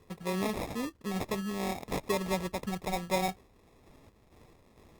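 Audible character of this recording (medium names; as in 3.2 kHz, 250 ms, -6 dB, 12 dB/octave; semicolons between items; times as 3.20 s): random-step tremolo 4.4 Hz; aliases and images of a low sample rate 1.5 kHz, jitter 0%; Opus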